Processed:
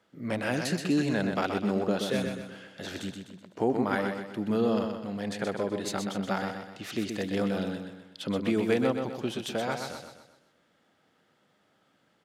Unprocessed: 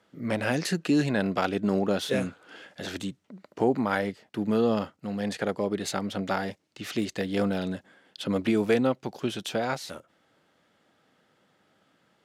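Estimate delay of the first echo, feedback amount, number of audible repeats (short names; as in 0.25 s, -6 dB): 0.126 s, 44%, 5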